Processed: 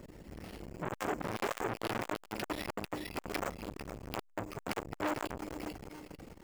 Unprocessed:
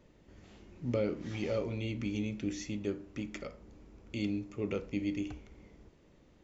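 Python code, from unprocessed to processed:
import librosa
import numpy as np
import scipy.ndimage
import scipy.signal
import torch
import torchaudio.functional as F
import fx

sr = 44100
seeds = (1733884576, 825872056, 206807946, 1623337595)

p1 = fx.dereverb_blind(x, sr, rt60_s=0.5)
p2 = fx.rider(p1, sr, range_db=10, speed_s=2.0)
p3 = p1 + F.gain(torch.from_numpy(p2), 2.5).numpy()
p4 = np.clip(p3, -10.0 ** (-32.0 / 20.0), 10.0 ** (-32.0 / 20.0))
p5 = fx.echo_thinned(p4, sr, ms=446, feedback_pct=38, hz=410.0, wet_db=-7.5)
p6 = np.repeat(scipy.signal.resample_poly(p5, 1, 6), 6)[:len(p5)]
p7 = fx.buffer_crackle(p6, sr, first_s=0.64, period_s=0.42, block=64, kind='zero')
p8 = fx.transformer_sat(p7, sr, knee_hz=1500.0)
y = F.gain(torch.from_numpy(p8), 8.5).numpy()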